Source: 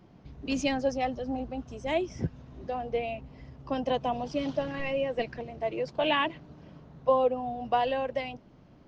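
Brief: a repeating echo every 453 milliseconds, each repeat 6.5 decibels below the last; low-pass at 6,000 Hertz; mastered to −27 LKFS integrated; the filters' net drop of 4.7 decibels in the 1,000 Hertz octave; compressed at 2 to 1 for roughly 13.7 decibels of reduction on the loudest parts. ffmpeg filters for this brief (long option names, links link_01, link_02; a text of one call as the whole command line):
ffmpeg -i in.wav -af "lowpass=6000,equalizer=frequency=1000:width_type=o:gain=-7,acompressor=threshold=-47dB:ratio=2,aecho=1:1:453|906|1359|1812|2265|2718:0.473|0.222|0.105|0.0491|0.0231|0.0109,volume=15.5dB" out.wav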